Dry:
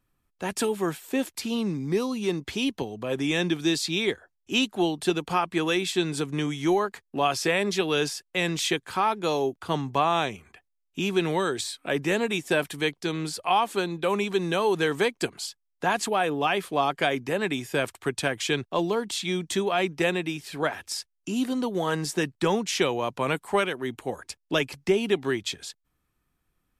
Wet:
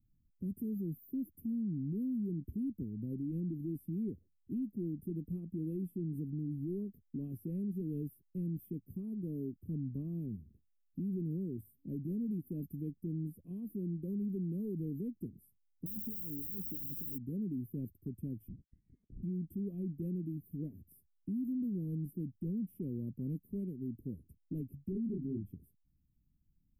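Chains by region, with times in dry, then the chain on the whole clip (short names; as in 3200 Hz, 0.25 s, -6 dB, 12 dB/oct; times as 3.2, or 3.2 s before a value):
15.86–17.18 HPF 110 Hz 6 dB/oct + negative-ratio compressor -32 dBFS + requantised 6-bit, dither triangular
18.48–19.23 HPF 600 Hz 24 dB/oct + inverted band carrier 2600 Hz + compressor 5:1, threshold -40 dBFS
24.92–25.51 tilt shelf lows +5.5 dB, about 720 Hz + doubler 27 ms -3 dB
whole clip: inverse Chebyshev band-stop 750–7300 Hz, stop band 60 dB; dynamic EQ 140 Hz, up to -5 dB, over -45 dBFS, Q 2.2; limiter -33.5 dBFS; gain +2 dB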